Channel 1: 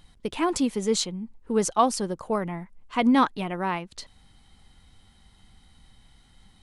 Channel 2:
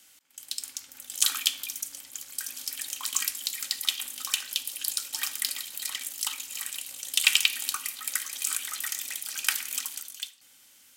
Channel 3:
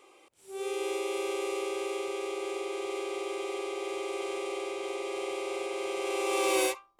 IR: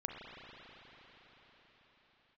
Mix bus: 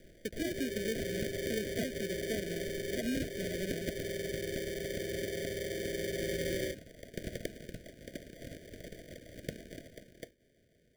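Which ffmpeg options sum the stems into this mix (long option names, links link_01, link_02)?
-filter_complex "[0:a]volume=-6dB,asplit=2[link_01][link_02];[1:a]volume=-4.5dB[link_03];[2:a]volume=-1.5dB[link_04];[link_02]apad=whole_len=483647[link_05];[link_03][link_05]sidechaingate=range=-7dB:threshold=-50dB:ratio=16:detection=peak[link_06];[link_01][link_06][link_04]amix=inputs=3:normalize=0,acrossover=split=270|6000[link_07][link_08][link_09];[link_07]acompressor=threshold=-44dB:ratio=4[link_10];[link_08]acompressor=threshold=-33dB:ratio=4[link_11];[link_09]acompressor=threshold=-46dB:ratio=4[link_12];[link_10][link_11][link_12]amix=inputs=3:normalize=0,acrusher=samples=33:mix=1:aa=0.000001,asuperstop=centerf=990:order=20:qfactor=1.3"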